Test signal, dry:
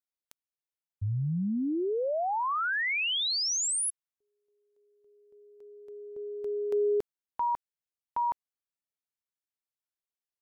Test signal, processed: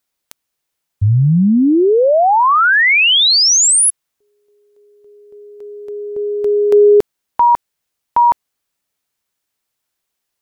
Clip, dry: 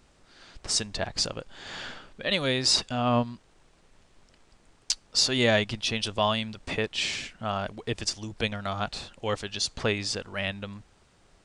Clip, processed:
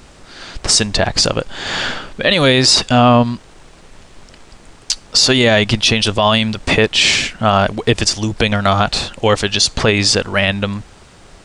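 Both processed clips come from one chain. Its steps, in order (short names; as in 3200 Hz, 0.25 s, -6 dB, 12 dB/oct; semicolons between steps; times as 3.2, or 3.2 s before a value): maximiser +19.5 dB; gain -1 dB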